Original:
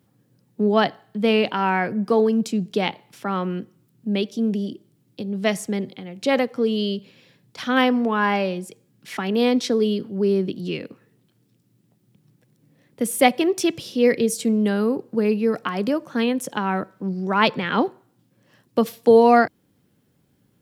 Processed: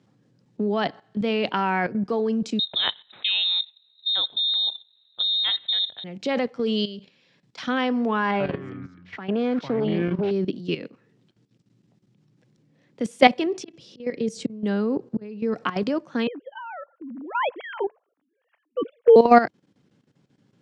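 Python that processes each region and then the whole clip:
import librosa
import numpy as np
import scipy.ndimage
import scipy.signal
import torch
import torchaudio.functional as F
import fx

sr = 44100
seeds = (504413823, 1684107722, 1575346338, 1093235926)

y = fx.chain(x, sr, fx.low_shelf(hz=480.0, db=6.5),
    fx.freq_invert(carrier_hz=3900), at=(2.59, 6.04))
y = fx.chain(y, sr, fx.highpass(hz=160.0, slope=12),
    fx.peak_eq(hz=350.0, db=-4.0, octaves=1.8), at=(6.54, 7.62))
y = fx.chain(y, sr, fx.echo_pitch(ms=89, semitones=-6, count=2, db_per_echo=-6.0),
    fx.tube_stage(drive_db=15.0, bias=0.5),
    fx.lowpass(hz=2500.0, slope=12), at=(8.31, 10.31))
y = fx.chain(y, sr, fx.auto_swell(attack_ms=595.0),
    fx.low_shelf(hz=500.0, db=4.5),
    fx.hum_notches(base_hz=60, count=2), at=(13.46, 15.58))
y = fx.chain(y, sr, fx.sine_speech(),
    fx.air_absorb(metres=210.0), at=(16.27, 19.16))
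y = scipy.signal.sosfilt(scipy.signal.butter(4, 110.0, 'highpass', fs=sr, output='sos'), y)
y = fx.level_steps(y, sr, step_db=13)
y = scipy.signal.sosfilt(scipy.signal.butter(4, 6800.0, 'lowpass', fs=sr, output='sos'), y)
y = y * librosa.db_to_amplitude(3.0)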